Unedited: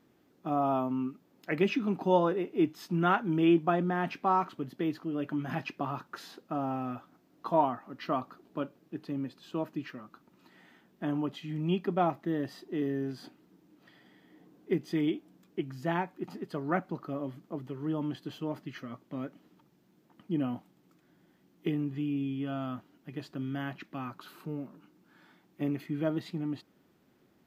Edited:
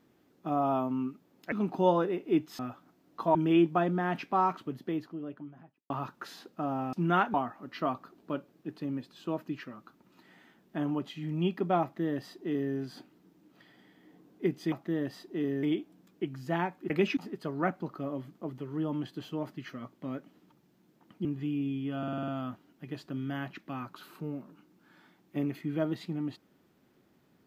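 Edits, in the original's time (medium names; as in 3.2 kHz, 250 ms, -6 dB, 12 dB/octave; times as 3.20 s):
1.52–1.79 s: move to 16.26 s
2.86–3.27 s: swap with 6.85–7.61 s
4.50–5.82 s: studio fade out
12.10–13.01 s: copy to 14.99 s
20.34–21.80 s: delete
22.53 s: stutter 0.05 s, 7 plays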